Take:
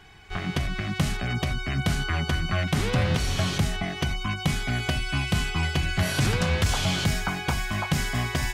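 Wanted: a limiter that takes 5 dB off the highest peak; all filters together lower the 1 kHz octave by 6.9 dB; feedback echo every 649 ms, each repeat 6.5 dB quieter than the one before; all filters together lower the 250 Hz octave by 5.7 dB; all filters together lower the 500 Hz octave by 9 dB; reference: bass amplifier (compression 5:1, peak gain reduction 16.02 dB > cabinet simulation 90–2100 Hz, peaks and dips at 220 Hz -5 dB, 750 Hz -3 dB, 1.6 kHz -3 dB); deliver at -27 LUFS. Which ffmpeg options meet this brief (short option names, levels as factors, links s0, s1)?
-af "equalizer=f=250:t=o:g=-5.5,equalizer=f=500:t=o:g=-8,equalizer=f=1000:t=o:g=-4,alimiter=limit=0.119:level=0:latency=1,aecho=1:1:649|1298|1947|2596|3245|3894:0.473|0.222|0.105|0.0491|0.0231|0.0109,acompressor=threshold=0.0112:ratio=5,highpass=f=90:w=0.5412,highpass=f=90:w=1.3066,equalizer=f=220:t=q:w=4:g=-5,equalizer=f=750:t=q:w=4:g=-3,equalizer=f=1600:t=q:w=4:g=-3,lowpass=f=2100:w=0.5412,lowpass=f=2100:w=1.3066,volume=8.41"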